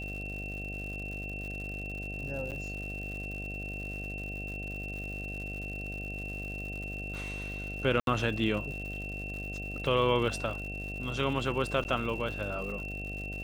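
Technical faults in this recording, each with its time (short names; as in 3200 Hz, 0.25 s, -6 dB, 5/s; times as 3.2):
buzz 50 Hz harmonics 15 -40 dBFS
crackle 170/s -40 dBFS
tone 2700 Hz -39 dBFS
2.51–2.52 gap 7.8 ms
8–8.07 gap 72 ms
11.84–11.85 gap 9.8 ms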